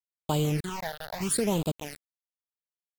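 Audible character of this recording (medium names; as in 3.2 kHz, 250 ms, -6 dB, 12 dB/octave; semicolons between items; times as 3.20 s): chopped level 0.83 Hz, depth 65%, duty 50%; a quantiser's noise floor 6-bit, dither none; phasing stages 8, 0.75 Hz, lowest notch 300–1800 Hz; AAC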